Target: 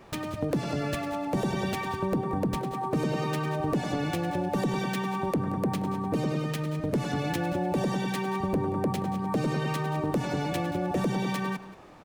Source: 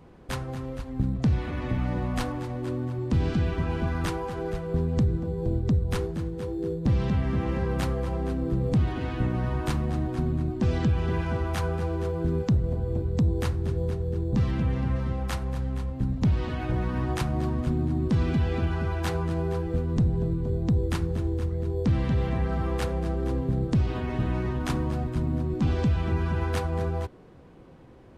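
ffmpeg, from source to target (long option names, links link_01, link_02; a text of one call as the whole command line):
ffmpeg -i in.wav -af "acompressor=threshold=-30dB:ratio=1.5,asetrate=103194,aresample=44100,aecho=1:1:179:0.158" out.wav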